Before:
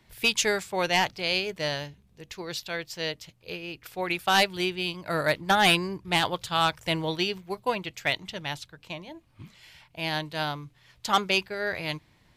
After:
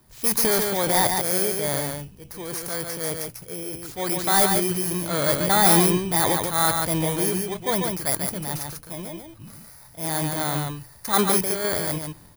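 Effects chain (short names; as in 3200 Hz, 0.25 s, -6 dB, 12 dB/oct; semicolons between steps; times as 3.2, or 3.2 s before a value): FFT order left unsorted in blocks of 16 samples; transient shaper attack -3 dB, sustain +9 dB; echo 0.143 s -4.5 dB; gain +3.5 dB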